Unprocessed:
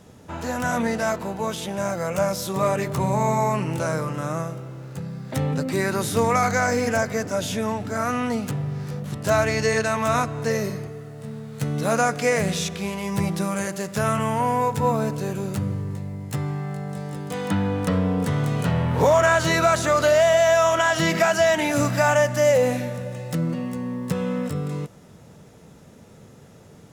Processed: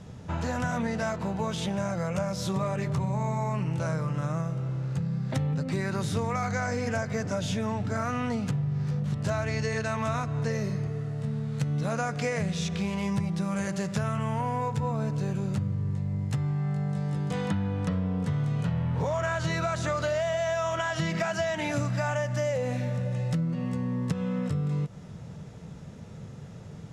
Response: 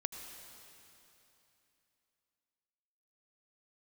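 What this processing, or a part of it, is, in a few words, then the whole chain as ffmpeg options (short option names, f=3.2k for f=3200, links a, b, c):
jukebox: -af "lowpass=6.9k,lowshelf=f=210:t=q:w=1.5:g=6,acompressor=threshold=-26dB:ratio=6"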